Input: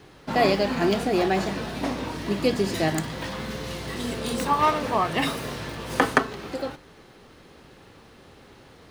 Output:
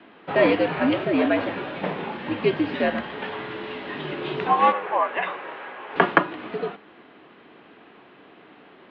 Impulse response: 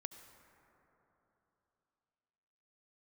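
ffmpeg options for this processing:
-filter_complex "[0:a]highpass=f=320:t=q:w=0.5412,highpass=f=320:t=q:w=1.307,lowpass=f=3.3k:t=q:w=0.5176,lowpass=f=3.3k:t=q:w=0.7071,lowpass=f=3.3k:t=q:w=1.932,afreqshift=-93,asettb=1/sr,asplit=3[a][b][c];[a]atrim=end=4.724[d];[b]atrim=start=4.72:end=5.96,asetpts=PTS-STARTPTS,afade=t=in:d=0.004:c=qsin,afade=t=out:st=1.236:d=0.004:c=qsin,acrossover=split=480 2500:gain=0.141 1 0.2[e][f][g];[e][f][g]amix=inputs=3:normalize=0[h];[c]atrim=start=5.956[i];[d][h]acrossfade=d=0.004:c1=hsin:c2=qsin[j];[j][i]acrossfade=d=0.004:c1=qsin:c2=hsin,volume=3dB"

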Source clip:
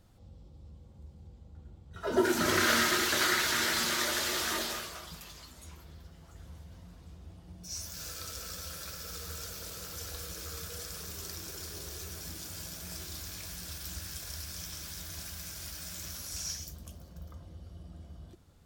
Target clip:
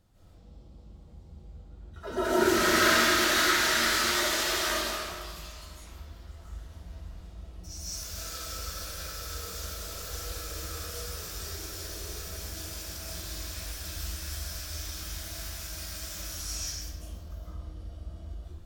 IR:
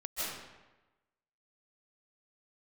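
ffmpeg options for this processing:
-filter_complex "[0:a]asubboost=boost=4.5:cutoff=64[a];[1:a]atrim=start_sample=2205[b];[a][b]afir=irnorm=-1:irlink=0"

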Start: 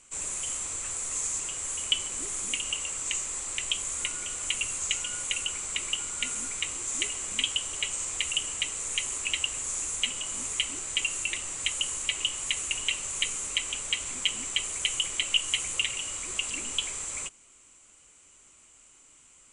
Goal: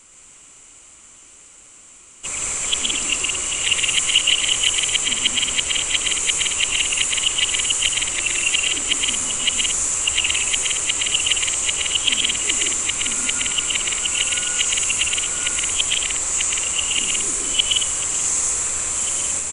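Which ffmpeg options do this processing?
-filter_complex "[0:a]areverse,asplit=2[a][b];[b]asoftclip=type=tanh:threshold=-17dB,volume=-8.5dB[c];[a][c]amix=inputs=2:normalize=0,bandreject=f=50:t=h:w=6,bandreject=f=100:t=h:w=6,aecho=1:1:119.5|169.1|224.5:0.708|0.631|0.355,volume=5.5dB"

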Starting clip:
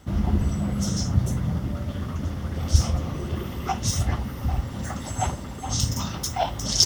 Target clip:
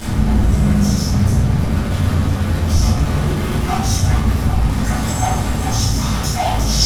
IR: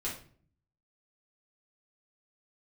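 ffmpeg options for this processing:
-filter_complex "[0:a]aeval=exprs='val(0)+0.5*0.1*sgn(val(0))':c=same[a];[1:a]atrim=start_sample=2205,asetrate=26019,aresample=44100[b];[a][b]afir=irnorm=-1:irlink=0,volume=-4.5dB"

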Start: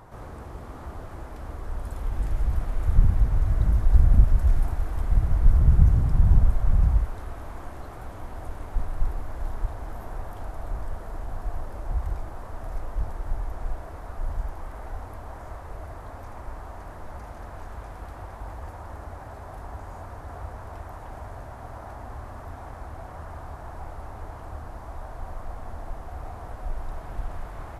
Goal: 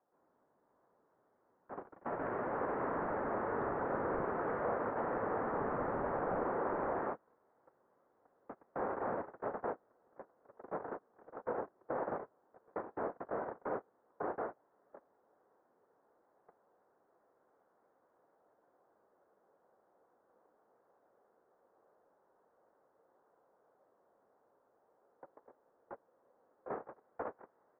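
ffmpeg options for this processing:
-af "agate=range=-37dB:threshold=-27dB:ratio=16:detection=peak,highpass=f=470:t=q:w=0.5412,highpass=f=470:t=q:w=1.307,lowpass=f=2k:t=q:w=0.5176,lowpass=f=2k:t=q:w=0.7071,lowpass=f=2k:t=q:w=1.932,afreqshift=-210,volume=8.5dB"

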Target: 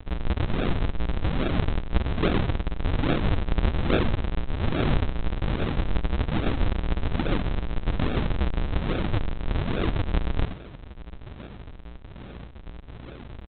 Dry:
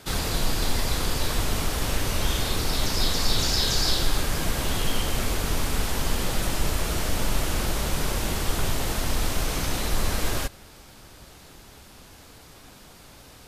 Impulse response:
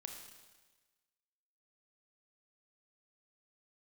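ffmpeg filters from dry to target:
-filter_complex "[0:a]tiltshelf=f=1.4k:g=-9.5,asplit=2[a][b];[b]acompressor=threshold=-32dB:ratio=6,volume=0.5dB[c];[a][c]amix=inputs=2:normalize=0,tremolo=f=7.1:d=0.45,aecho=1:1:26|67:0.376|0.422,aeval=exprs='val(0)+0.00398*(sin(2*PI*60*n/s)+sin(2*PI*2*60*n/s)/2+sin(2*PI*3*60*n/s)/3+sin(2*PI*4*60*n/s)/4+sin(2*PI*5*60*n/s)/5)':c=same,aresample=8000,acrusher=samples=39:mix=1:aa=0.000001:lfo=1:lforange=62.4:lforate=1.2,aresample=44100,volume=4dB"

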